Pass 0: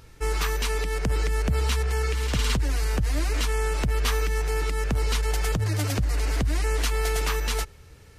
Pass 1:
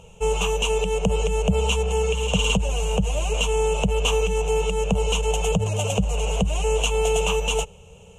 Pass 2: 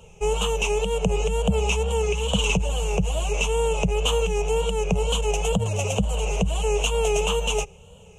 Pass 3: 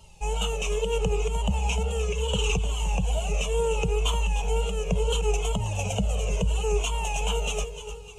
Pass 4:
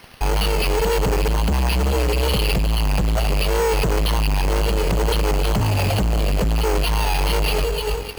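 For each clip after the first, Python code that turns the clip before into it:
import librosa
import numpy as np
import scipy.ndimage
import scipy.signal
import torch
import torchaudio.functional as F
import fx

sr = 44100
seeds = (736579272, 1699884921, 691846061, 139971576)

y1 = fx.curve_eq(x, sr, hz=(130.0, 190.0, 300.0, 450.0, 930.0, 1900.0, 2800.0, 4700.0, 6700.0, 14000.0), db=(0, 13, -16, 11, 7, -19, 14, -18, 10, -13))
y2 = fx.wow_flutter(y1, sr, seeds[0], rate_hz=2.1, depth_cents=99.0)
y2 = F.gain(torch.from_numpy(y2), -1.0).numpy()
y3 = fx.dmg_noise_band(y2, sr, seeds[1], low_hz=2700.0, high_hz=10000.0, level_db=-59.0)
y3 = fx.echo_feedback(y3, sr, ms=302, feedback_pct=44, wet_db=-11.5)
y3 = fx.comb_cascade(y3, sr, direction='falling', hz=0.72)
y4 = fx.fuzz(y3, sr, gain_db=36.0, gate_db=-45.0)
y4 = fx.quant_dither(y4, sr, seeds[2], bits=6, dither='triangular')
y4 = np.repeat(scipy.signal.resample_poly(y4, 1, 6), 6)[:len(y4)]
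y4 = F.gain(torch.from_numpy(y4), -3.5).numpy()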